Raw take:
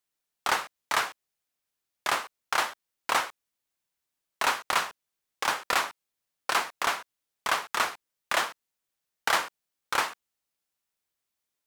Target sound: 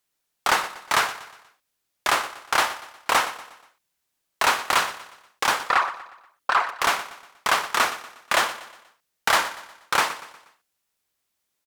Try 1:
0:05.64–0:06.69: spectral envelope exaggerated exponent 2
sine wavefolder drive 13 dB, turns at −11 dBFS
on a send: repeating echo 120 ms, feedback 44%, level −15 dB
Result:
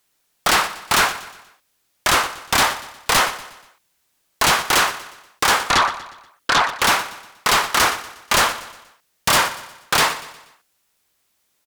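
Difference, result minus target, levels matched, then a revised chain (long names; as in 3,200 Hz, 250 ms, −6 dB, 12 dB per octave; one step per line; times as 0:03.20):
sine wavefolder: distortion +18 dB
0:05.64–0:06.69: spectral envelope exaggerated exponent 2
sine wavefolder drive 3 dB, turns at −11 dBFS
on a send: repeating echo 120 ms, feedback 44%, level −15 dB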